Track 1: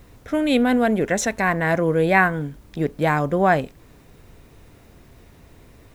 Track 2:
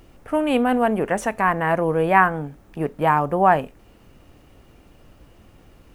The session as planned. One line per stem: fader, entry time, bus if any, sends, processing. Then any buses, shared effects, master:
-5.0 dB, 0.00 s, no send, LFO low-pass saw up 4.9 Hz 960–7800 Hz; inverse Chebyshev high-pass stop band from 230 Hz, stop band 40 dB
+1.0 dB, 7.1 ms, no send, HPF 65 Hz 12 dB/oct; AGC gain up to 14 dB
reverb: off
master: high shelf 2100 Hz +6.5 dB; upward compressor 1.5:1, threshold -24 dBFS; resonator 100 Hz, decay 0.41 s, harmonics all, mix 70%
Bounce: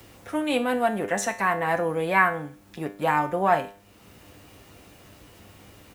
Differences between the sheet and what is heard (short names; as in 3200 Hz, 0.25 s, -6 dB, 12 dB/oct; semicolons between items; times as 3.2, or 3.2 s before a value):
stem 1: missing LFO low-pass saw up 4.9 Hz 960–7800 Hz; stem 2: missing AGC gain up to 14 dB